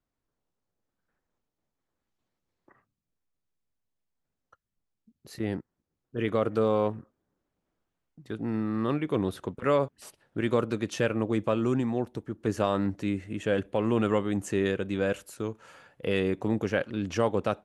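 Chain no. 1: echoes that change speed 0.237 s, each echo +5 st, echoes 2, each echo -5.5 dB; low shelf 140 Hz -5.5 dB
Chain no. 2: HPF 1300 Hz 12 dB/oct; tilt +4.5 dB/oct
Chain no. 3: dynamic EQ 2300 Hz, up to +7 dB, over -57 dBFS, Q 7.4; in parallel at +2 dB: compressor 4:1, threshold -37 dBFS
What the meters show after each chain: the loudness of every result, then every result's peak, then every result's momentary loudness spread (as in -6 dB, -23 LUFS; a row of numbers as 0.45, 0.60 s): -30.0, -35.0, -26.5 LUFS; -10.5, -13.0, -9.5 dBFS; 11, 15, 9 LU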